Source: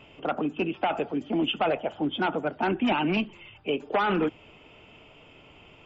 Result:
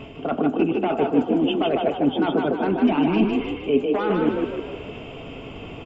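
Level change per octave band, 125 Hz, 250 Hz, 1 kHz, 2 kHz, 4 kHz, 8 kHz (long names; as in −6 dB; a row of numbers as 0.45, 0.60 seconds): +6.0 dB, +8.5 dB, +2.0 dB, −0.5 dB, +0.5 dB, can't be measured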